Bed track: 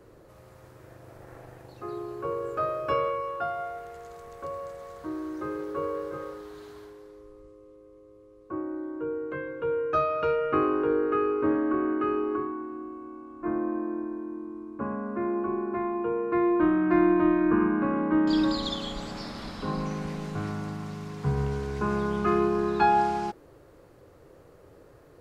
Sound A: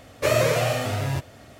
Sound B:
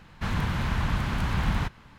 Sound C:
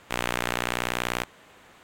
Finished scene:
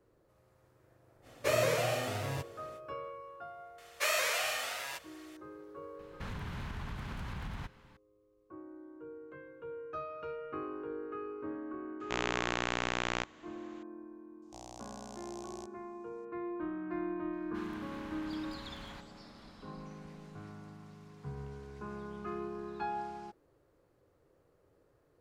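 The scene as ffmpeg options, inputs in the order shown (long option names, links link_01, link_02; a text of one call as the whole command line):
ffmpeg -i bed.wav -i cue0.wav -i cue1.wav -i cue2.wav -filter_complex "[1:a]asplit=2[link_01][link_02];[2:a]asplit=2[link_03][link_04];[3:a]asplit=2[link_05][link_06];[0:a]volume=-16dB[link_07];[link_01]lowshelf=frequency=170:gain=-6.5[link_08];[link_02]highpass=1200[link_09];[link_03]acompressor=threshold=-28dB:ratio=6:attack=3.2:release=140:knee=1:detection=peak[link_10];[link_05]aresample=16000,aresample=44100[link_11];[link_06]firequalizer=gain_entry='entry(110,0);entry(190,-22);entry(740,4);entry(1400,-25);entry(2600,-17);entry(5400,6);entry(14000,-17)':delay=0.05:min_phase=1[link_12];[link_04]lowshelf=frequency=360:gain=-11.5[link_13];[link_08]atrim=end=1.59,asetpts=PTS-STARTPTS,volume=-8dB,afade=type=in:duration=0.05,afade=type=out:start_time=1.54:duration=0.05,adelay=1220[link_14];[link_09]atrim=end=1.59,asetpts=PTS-STARTPTS,volume=-3.5dB,afade=type=in:duration=0.004:curve=hsin,afade=type=out:start_time=1.586:duration=0.004:curve=hsin,adelay=3780[link_15];[link_10]atrim=end=1.98,asetpts=PTS-STARTPTS,volume=-8.5dB,afade=type=in:duration=0.004:curve=hsin,afade=type=out:start_time=1.976:duration=0.004:curve=hsin,adelay=5990[link_16];[link_11]atrim=end=1.83,asetpts=PTS-STARTPTS,volume=-5.5dB,afade=type=in:duration=0.004:curve=hsin,afade=type=out:start_time=1.826:duration=0.004:curve=hsin,adelay=12000[link_17];[link_12]atrim=end=1.83,asetpts=PTS-STARTPTS,volume=-16.5dB,afade=type=in:duration=0.004:curve=hsin,afade=type=out:start_time=1.826:duration=0.004:curve=hsin,adelay=14420[link_18];[link_13]atrim=end=1.98,asetpts=PTS-STARTPTS,volume=-16.5dB,afade=type=in:duration=0.004:curve=hsin,afade=type=out:start_time=1.976:duration=0.004:curve=hsin,adelay=17330[link_19];[link_07][link_14][link_15][link_16][link_17][link_18][link_19]amix=inputs=7:normalize=0" out.wav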